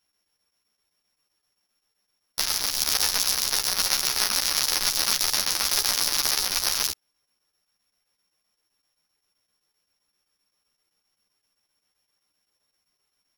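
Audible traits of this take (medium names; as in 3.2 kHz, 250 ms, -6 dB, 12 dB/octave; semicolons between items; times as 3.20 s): a buzz of ramps at a fixed pitch in blocks of 8 samples; chopped level 7.7 Hz, depth 60%, duty 80%; a shimmering, thickened sound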